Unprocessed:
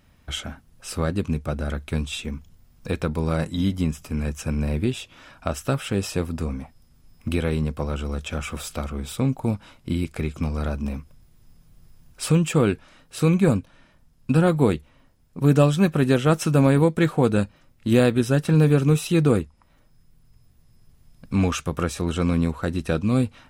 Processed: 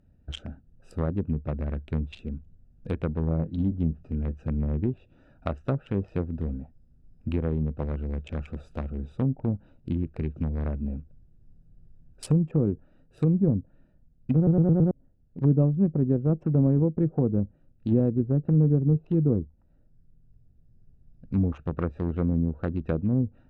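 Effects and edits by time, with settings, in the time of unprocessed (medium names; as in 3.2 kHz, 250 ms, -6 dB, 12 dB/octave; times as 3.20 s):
3.19–4.41 s: doubling 24 ms -13 dB
14.36 s: stutter in place 0.11 s, 5 plays
whole clip: local Wiener filter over 41 samples; bass shelf 110 Hz +2.5 dB; low-pass that closes with the level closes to 400 Hz, closed at -16 dBFS; trim -3.5 dB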